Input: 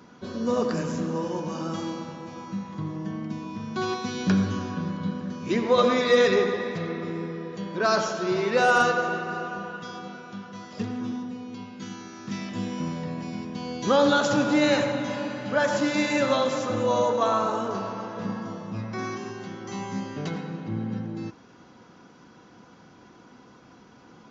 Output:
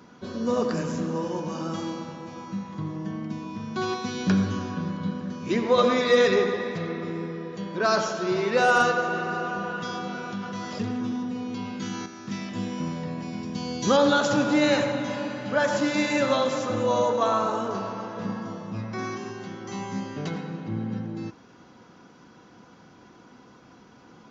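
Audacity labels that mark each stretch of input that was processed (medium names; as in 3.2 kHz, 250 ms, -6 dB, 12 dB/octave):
9.100000	12.060000	level flattener amount 50%
13.430000	13.970000	tone controls bass +4 dB, treble +8 dB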